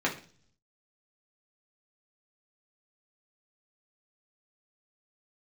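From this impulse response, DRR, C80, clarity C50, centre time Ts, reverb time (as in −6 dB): −4.0 dB, 16.0 dB, 11.0 dB, 17 ms, 0.45 s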